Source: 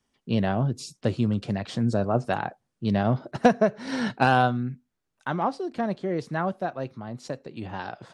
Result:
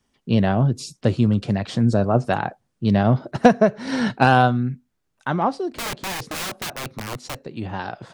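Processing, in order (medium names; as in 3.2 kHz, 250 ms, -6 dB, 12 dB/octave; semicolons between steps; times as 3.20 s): bass shelf 180 Hz +3.5 dB; 5.71–7.36 s: integer overflow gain 28 dB; trim +4.5 dB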